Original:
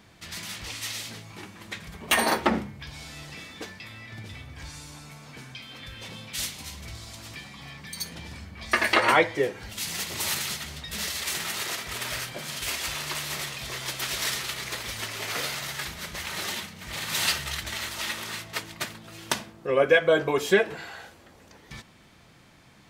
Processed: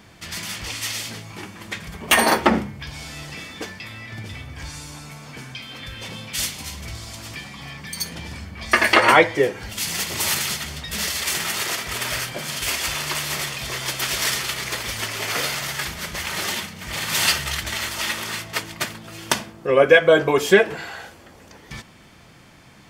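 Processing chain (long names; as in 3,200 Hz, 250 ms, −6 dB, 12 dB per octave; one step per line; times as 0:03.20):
notch filter 3,900 Hz, Q 14
level +6.5 dB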